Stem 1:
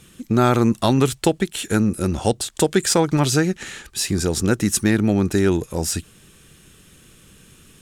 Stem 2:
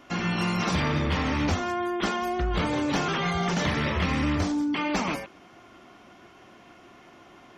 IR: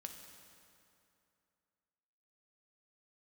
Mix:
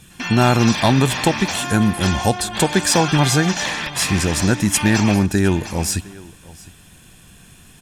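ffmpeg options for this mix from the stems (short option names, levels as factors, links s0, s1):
-filter_complex "[0:a]volume=1.12,asplit=4[s0][s1][s2][s3];[s1]volume=0.158[s4];[s2]volume=0.0944[s5];[1:a]highpass=f=780:p=1,highshelf=f=3400:g=9.5,volume=1.33,asplit=3[s6][s7][s8];[s7]volume=0.0794[s9];[s8]volume=0.316[s10];[s3]apad=whole_len=334260[s11];[s6][s11]sidechaingate=range=0.0224:threshold=0.0112:ratio=16:detection=peak[s12];[2:a]atrim=start_sample=2205[s13];[s4][s9]amix=inputs=2:normalize=0[s14];[s14][s13]afir=irnorm=-1:irlink=0[s15];[s5][s10]amix=inputs=2:normalize=0,aecho=0:1:708:1[s16];[s0][s12][s15][s16]amix=inputs=4:normalize=0,aecho=1:1:1.2:0.39"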